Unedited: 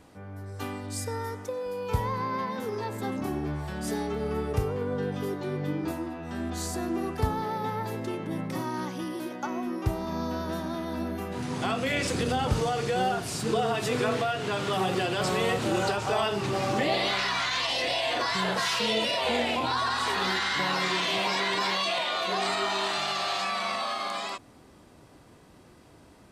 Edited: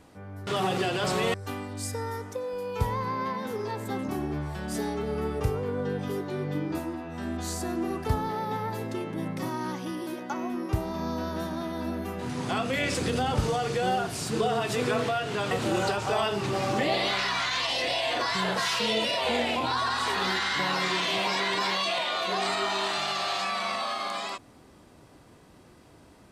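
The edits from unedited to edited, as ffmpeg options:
ffmpeg -i in.wav -filter_complex "[0:a]asplit=4[link_01][link_02][link_03][link_04];[link_01]atrim=end=0.472[link_05];[link_02]atrim=start=14.638:end=15.512[link_06];[link_03]atrim=start=0.468:end=14.642[link_07];[link_04]atrim=start=15.508[link_08];[link_05][link_06]acrossfade=duration=0.004:curve1=hsin:curve2=hsin[link_09];[link_09][link_07]acrossfade=duration=0.004:curve1=hsin:curve2=hsin[link_10];[link_10][link_08]acrossfade=duration=0.004:curve1=hsin:curve2=hsin" out.wav

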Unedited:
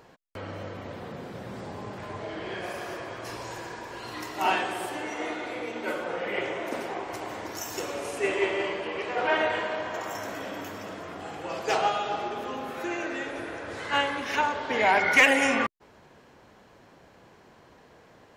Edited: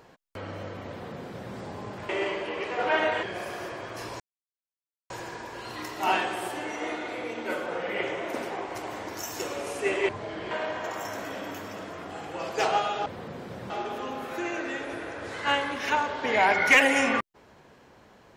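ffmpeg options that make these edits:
ffmpeg -i in.wav -filter_complex "[0:a]asplit=8[link_01][link_02][link_03][link_04][link_05][link_06][link_07][link_08];[link_01]atrim=end=2.092[link_09];[link_02]atrim=start=8.468:end=9.612[link_10];[link_03]atrim=start=2.508:end=3.48,asetpts=PTS-STARTPTS,afade=type=out:start_time=0.968:duration=0.004:curve=hsin,apad=pad_dur=0.9[link_11];[link_04]atrim=start=3.48:end=8.472,asetpts=PTS-STARTPTS,afade=type=in:duration=0.004:curve=hsin[link_12];[link_05]atrim=start=2.088:end=2.512[link_13];[link_06]atrim=start=9.608:end=12.162[link_14];[link_07]atrim=start=0.898:end=1.542[link_15];[link_08]atrim=start=12.158[link_16];[link_09][link_10]acrossfade=duration=0.004:curve1=hsin:curve2=hsin[link_17];[link_11][link_12]concat=n=2:v=0:a=1[link_18];[link_17][link_18]acrossfade=duration=0.004:curve1=hsin:curve2=hsin[link_19];[link_19][link_13]acrossfade=duration=0.004:curve1=hsin:curve2=hsin[link_20];[link_20][link_14]acrossfade=duration=0.004:curve1=hsin:curve2=hsin[link_21];[link_21][link_15]acrossfade=duration=0.004:curve1=hsin:curve2=hsin[link_22];[link_22][link_16]acrossfade=duration=0.004:curve1=hsin:curve2=hsin" out.wav

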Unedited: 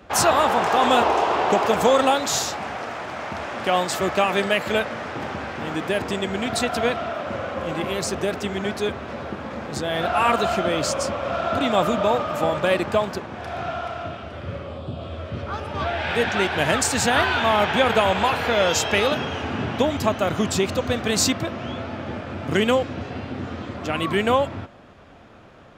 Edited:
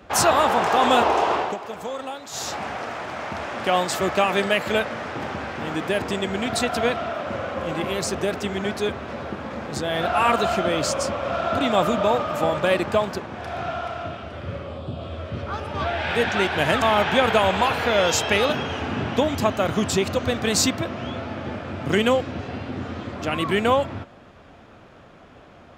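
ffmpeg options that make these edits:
ffmpeg -i in.wav -filter_complex "[0:a]asplit=4[link_01][link_02][link_03][link_04];[link_01]atrim=end=1.57,asetpts=PTS-STARTPTS,afade=type=out:start_time=1.33:duration=0.24:silence=0.199526[link_05];[link_02]atrim=start=1.57:end=2.31,asetpts=PTS-STARTPTS,volume=-14dB[link_06];[link_03]atrim=start=2.31:end=16.822,asetpts=PTS-STARTPTS,afade=type=in:duration=0.24:silence=0.199526[link_07];[link_04]atrim=start=17.438[link_08];[link_05][link_06][link_07]concat=n=3:v=0:a=1[link_09];[link_09][link_08]acrossfade=duration=0.004:curve1=hsin:curve2=hsin" out.wav

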